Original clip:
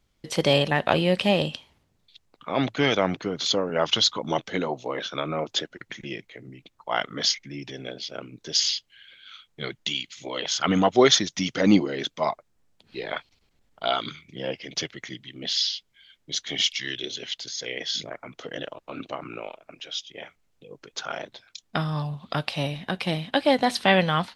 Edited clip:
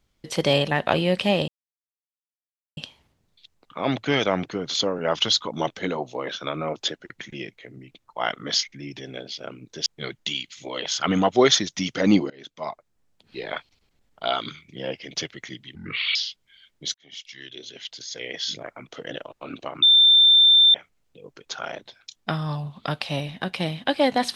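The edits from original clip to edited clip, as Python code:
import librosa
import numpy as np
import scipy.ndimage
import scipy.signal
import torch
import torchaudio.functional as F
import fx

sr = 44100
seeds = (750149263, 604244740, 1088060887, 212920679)

y = fx.edit(x, sr, fx.insert_silence(at_s=1.48, length_s=1.29),
    fx.cut(start_s=8.57, length_s=0.89),
    fx.fade_in_from(start_s=11.9, length_s=1.23, curve='qsin', floor_db=-23.5),
    fx.speed_span(start_s=15.35, length_s=0.27, speed=0.67),
    fx.fade_in_span(start_s=16.41, length_s=1.51),
    fx.bleep(start_s=19.29, length_s=0.92, hz=3570.0, db=-11.0), tone=tone)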